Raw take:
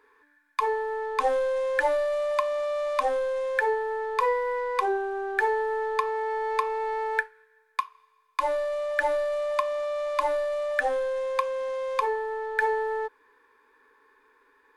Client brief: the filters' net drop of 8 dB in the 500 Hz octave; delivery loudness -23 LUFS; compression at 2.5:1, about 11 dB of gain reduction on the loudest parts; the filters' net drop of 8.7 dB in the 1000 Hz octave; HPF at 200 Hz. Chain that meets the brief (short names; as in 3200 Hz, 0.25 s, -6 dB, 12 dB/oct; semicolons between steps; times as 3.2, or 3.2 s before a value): HPF 200 Hz; bell 500 Hz -7 dB; bell 1000 Hz -8 dB; compressor 2.5:1, threshold -42 dBFS; gain +19 dB